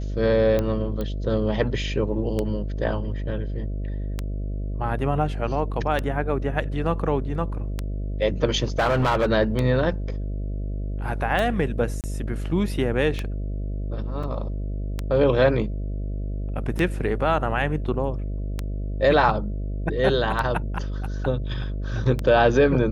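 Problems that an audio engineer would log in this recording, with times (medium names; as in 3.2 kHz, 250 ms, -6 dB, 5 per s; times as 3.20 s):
buzz 50 Hz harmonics 13 -28 dBFS
tick 33 1/3 rpm -12 dBFS
1.01 s: pop -17 dBFS
8.79–9.29 s: clipped -16.5 dBFS
12.01–12.04 s: dropout 28 ms
14.23 s: dropout 4.9 ms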